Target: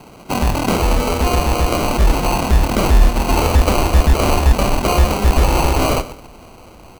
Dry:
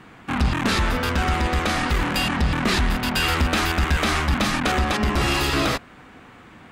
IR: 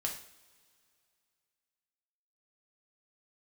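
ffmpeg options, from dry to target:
-filter_complex "[0:a]equalizer=frequency=860:width_type=o:width=2.4:gain=4.5,asetrate=42336,aresample=44100,asubboost=boost=6.5:cutoff=60,asplit=2[link_01][link_02];[link_02]aecho=0:1:124|248|372:0.178|0.0569|0.0182[link_03];[link_01][link_03]amix=inputs=2:normalize=0,acrusher=samples=25:mix=1:aa=0.000001,volume=2.5dB"

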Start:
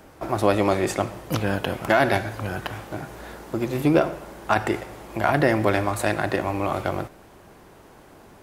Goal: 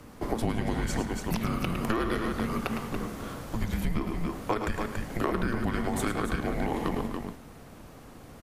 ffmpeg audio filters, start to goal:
ffmpeg -i in.wav -af "aecho=1:1:107.9|282.8:0.398|0.355,afreqshift=-330,acompressor=threshold=-25dB:ratio=6" out.wav

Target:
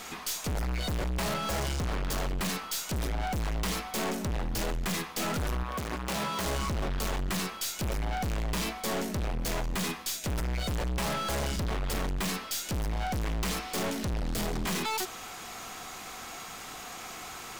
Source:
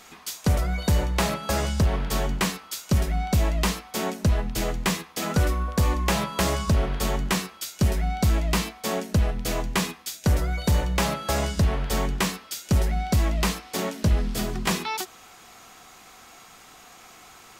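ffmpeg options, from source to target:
ffmpeg -i in.wav -filter_complex "[0:a]aeval=exprs='(tanh(70.8*val(0)+0.25)-tanh(0.25))/70.8':channel_layout=same,asettb=1/sr,asplit=3[link_01][link_02][link_03];[link_01]atrim=end=5.634[link_04];[link_02]atrim=start=5.63:end=6.46,asetpts=PTS-STARTPTS,afade=type=in:duration=0.004:curve=qsin,afade=type=out:start_time=0.826:duration=0.004:curve=qsin,highpass=frequency=130:poles=1[link_05];[link_03]atrim=start=6.456[link_06];[link_04][link_05]acrossfade=duration=0.004:curve1=hsin:curve2=qsin[link_07];[link_07][link_06]acrossfade=duration=0.004:curve1=qsin:curve2=hsin,volume=7.5dB" -ar 44100 -c:a adpcm_ima_wav out.wav

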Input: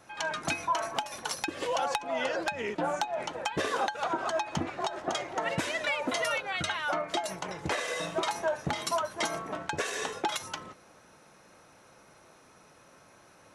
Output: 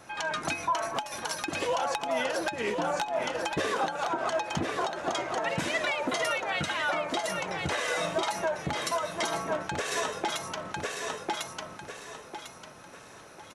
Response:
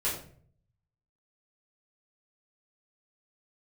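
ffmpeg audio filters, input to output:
-filter_complex "[0:a]asplit=2[link_01][link_02];[link_02]aecho=0:1:1049|2098|3147|4196:0.447|0.147|0.0486|0.0161[link_03];[link_01][link_03]amix=inputs=2:normalize=0,alimiter=level_in=1dB:limit=-24dB:level=0:latency=1:release=259,volume=-1dB,volume=5.5dB"

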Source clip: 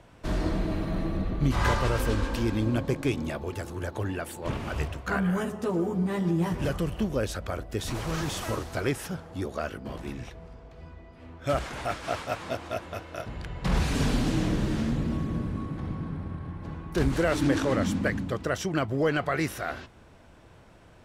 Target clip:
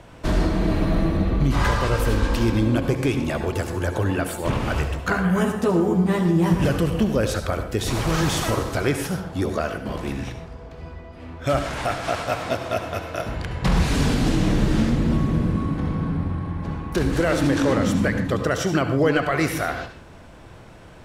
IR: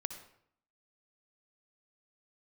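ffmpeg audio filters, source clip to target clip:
-filter_complex "[0:a]alimiter=limit=-19.5dB:level=0:latency=1:release=280[link_01];[1:a]atrim=start_sample=2205,atrim=end_sample=6615,asetrate=38808,aresample=44100[link_02];[link_01][link_02]afir=irnorm=-1:irlink=0,volume=9dB"

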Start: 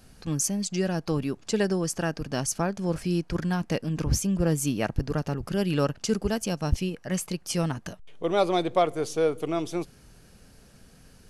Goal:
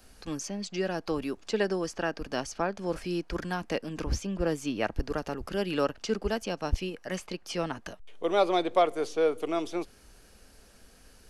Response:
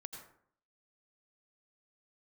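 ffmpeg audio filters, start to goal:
-filter_complex "[0:a]equalizer=frequency=140:width=1.3:gain=-14.5,acrossover=split=170|850|4900[link_01][link_02][link_03][link_04];[link_04]acompressor=threshold=-53dB:ratio=6[link_05];[link_01][link_02][link_03][link_05]amix=inputs=4:normalize=0"

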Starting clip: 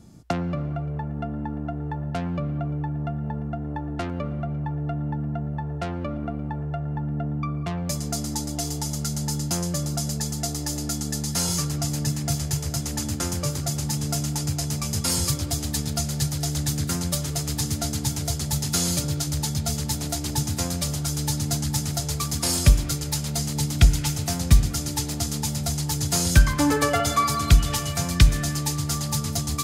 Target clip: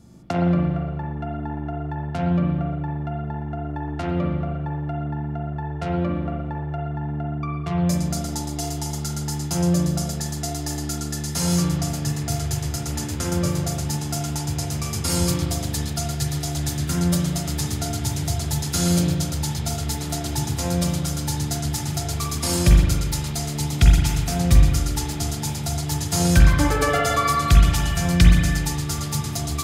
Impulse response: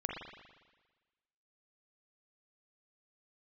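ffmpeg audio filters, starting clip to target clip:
-filter_complex "[1:a]atrim=start_sample=2205[link_01];[0:a][link_01]afir=irnorm=-1:irlink=0"

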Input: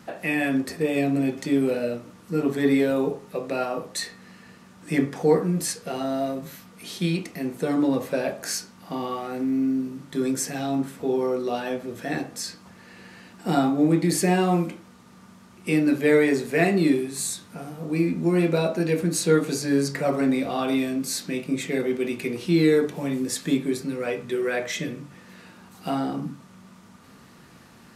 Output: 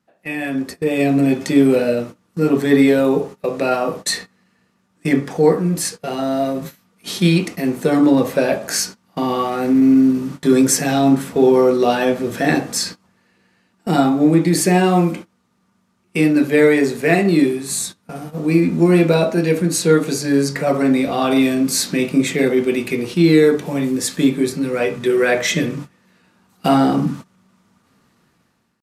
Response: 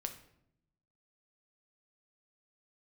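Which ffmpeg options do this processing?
-af "dynaudnorm=framelen=370:gausssize=5:maxgain=16dB,atempo=0.97,agate=range=-21dB:threshold=-28dB:ratio=16:detection=peak,volume=-1dB"

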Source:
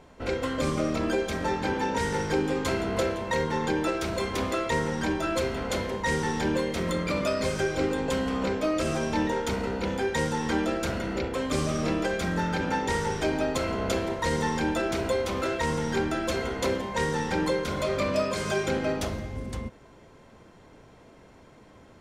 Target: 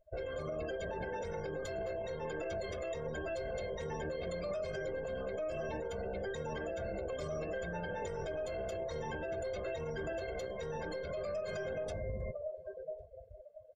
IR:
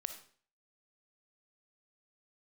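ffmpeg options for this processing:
-filter_complex "[0:a]atempo=1.6,aecho=1:1:1.9:0.75,aeval=exprs='0.251*(cos(1*acos(clip(val(0)/0.251,-1,1)))-cos(1*PI/2))+0.0355*(cos(3*acos(clip(val(0)/0.251,-1,1)))-cos(3*PI/2))+0.00631*(cos(6*acos(clip(val(0)/0.251,-1,1)))-cos(6*PI/2))':channel_layout=same,equalizer=frequency=670:width_type=o:width=0.51:gain=9,asplit=2[link_01][link_02];[link_02]adelay=1100,lowpass=frequency=3300:poles=1,volume=-21.5dB,asplit=2[link_03][link_04];[link_04]adelay=1100,lowpass=frequency=3300:poles=1,volume=0.29[link_05];[link_01][link_03][link_05]amix=inputs=3:normalize=0,afftdn=noise_reduction=35:noise_floor=-38,acompressor=threshold=-36dB:ratio=4,alimiter=level_in=11dB:limit=-24dB:level=0:latency=1:release=24,volume=-11dB,asuperstop=centerf=990:order=12:qfactor=6.3,volume=4dB"

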